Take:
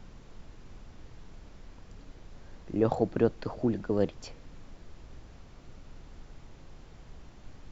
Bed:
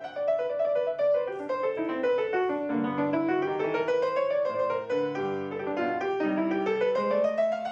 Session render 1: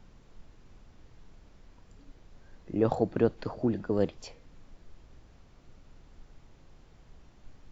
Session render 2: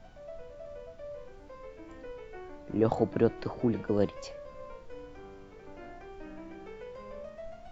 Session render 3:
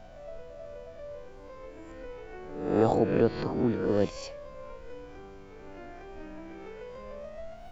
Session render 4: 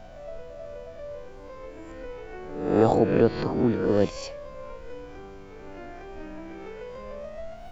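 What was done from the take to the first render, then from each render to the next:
noise print and reduce 6 dB
add bed -19 dB
spectral swells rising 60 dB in 0.82 s
gain +4 dB

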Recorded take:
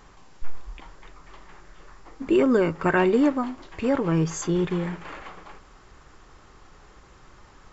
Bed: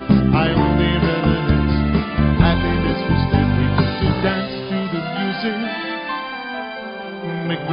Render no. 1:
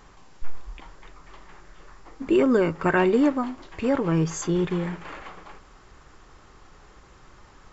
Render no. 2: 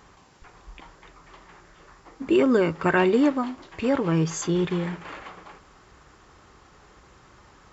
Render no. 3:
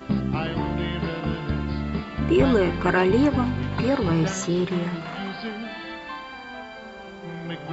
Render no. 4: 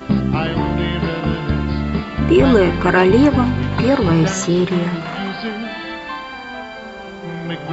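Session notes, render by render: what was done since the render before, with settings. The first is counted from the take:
nothing audible
HPF 54 Hz 12 dB/oct; dynamic EQ 3700 Hz, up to +4 dB, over -46 dBFS, Q 1.1
add bed -10.5 dB
gain +7.5 dB; limiter -2 dBFS, peak gain reduction 3 dB

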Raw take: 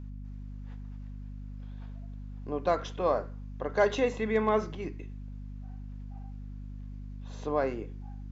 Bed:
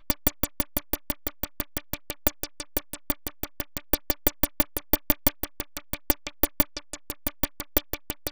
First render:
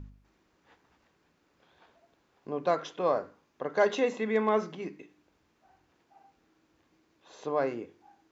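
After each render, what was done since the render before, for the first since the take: de-hum 50 Hz, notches 6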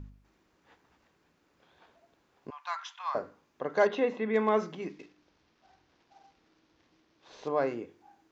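2.5–3.15 elliptic high-pass 900 Hz, stop band 50 dB; 3.87–4.34 air absorption 210 m; 4.89–7.48 CVSD 32 kbps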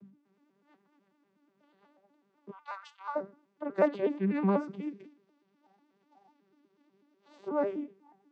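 arpeggiated vocoder bare fifth, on G3, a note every 0.123 s; vibrato 8.9 Hz 45 cents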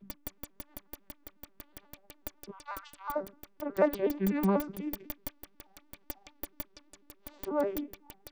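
add bed -18 dB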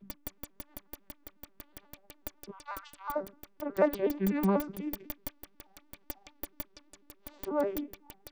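nothing audible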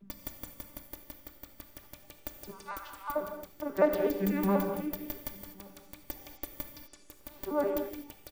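outdoor echo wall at 190 m, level -25 dB; non-linear reverb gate 0.27 s flat, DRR 4.5 dB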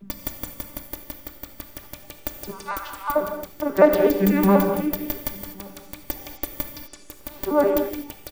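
gain +11 dB; limiter -2 dBFS, peak gain reduction 0.5 dB

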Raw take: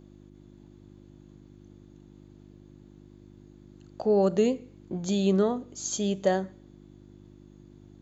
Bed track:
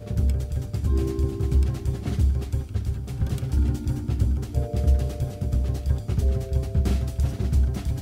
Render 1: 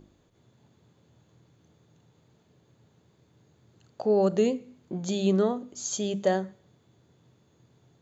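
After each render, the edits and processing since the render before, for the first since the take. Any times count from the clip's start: de-hum 50 Hz, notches 7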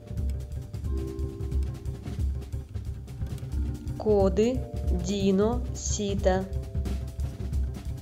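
add bed track -8 dB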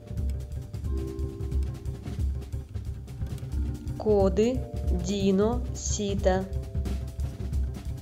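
nothing audible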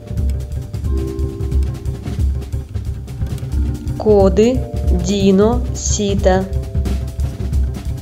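gain +12 dB; limiter -1 dBFS, peak gain reduction 2 dB

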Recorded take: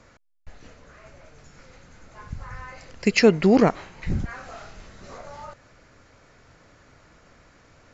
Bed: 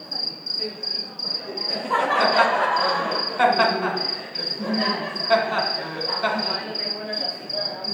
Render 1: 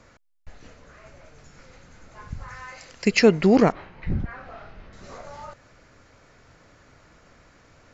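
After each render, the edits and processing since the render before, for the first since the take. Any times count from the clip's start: 2.48–3.05 tilt +2 dB/oct; 3.72–4.93 air absorption 280 m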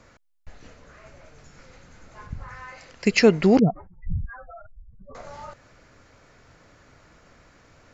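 2.26–3.04 high shelf 3900 Hz -> 5400 Hz -9 dB; 3.59–5.15 spectral contrast raised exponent 3.8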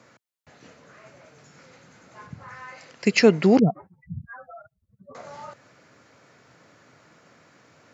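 HPF 120 Hz 24 dB/oct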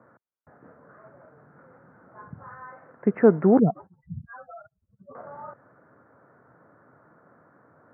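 steep low-pass 1600 Hz 48 dB/oct; low shelf 140 Hz -3.5 dB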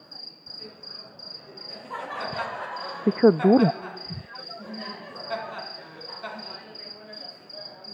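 add bed -13.5 dB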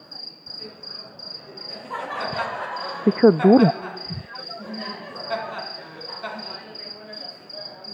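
gain +4 dB; limiter -2 dBFS, peak gain reduction 2 dB

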